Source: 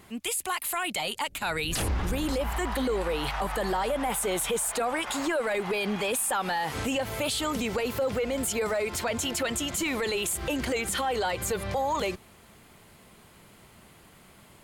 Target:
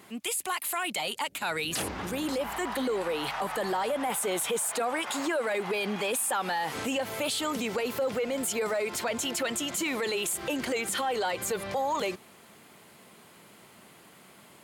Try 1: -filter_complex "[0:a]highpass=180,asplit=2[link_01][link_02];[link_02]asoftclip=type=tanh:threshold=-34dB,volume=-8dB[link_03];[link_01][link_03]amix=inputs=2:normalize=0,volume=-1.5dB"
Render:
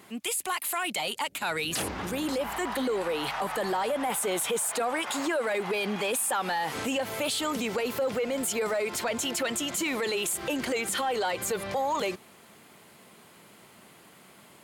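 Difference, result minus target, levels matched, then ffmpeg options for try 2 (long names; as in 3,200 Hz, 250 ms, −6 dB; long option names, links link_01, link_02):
soft clipping: distortion −4 dB
-filter_complex "[0:a]highpass=180,asplit=2[link_01][link_02];[link_02]asoftclip=type=tanh:threshold=-44.5dB,volume=-8dB[link_03];[link_01][link_03]amix=inputs=2:normalize=0,volume=-1.5dB"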